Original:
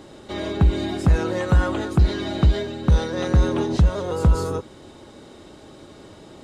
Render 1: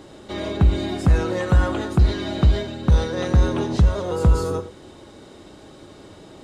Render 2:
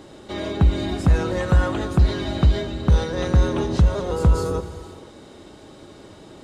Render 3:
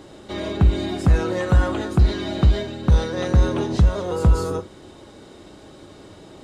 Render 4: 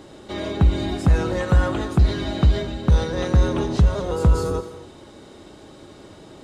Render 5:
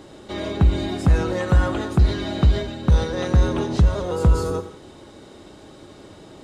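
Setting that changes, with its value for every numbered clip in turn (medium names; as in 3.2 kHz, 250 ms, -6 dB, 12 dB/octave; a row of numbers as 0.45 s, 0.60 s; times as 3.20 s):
gated-style reverb, gate: 130 ms, 530 ms, 80 ms, 290 ms, 200 ms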